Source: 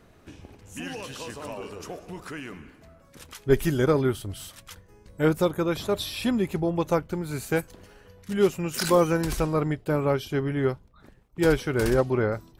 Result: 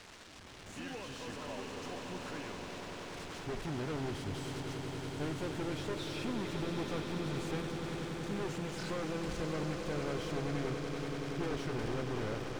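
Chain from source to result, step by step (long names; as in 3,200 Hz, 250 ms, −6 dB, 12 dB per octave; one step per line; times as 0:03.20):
spike at every zero crossing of −13 dBFS
brickwall limiter −17.5 dBFS, peak gain reduction 11.5 dB
automatic gain control gain up to 10 dB
tube saturation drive 28 dB, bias 0.75
log-companded quantiser 4 bits
high-frequency loss of the air 120 metres
echo that builds up and dies away 95 ms, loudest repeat 8, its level −11 dB
level −8.5 dB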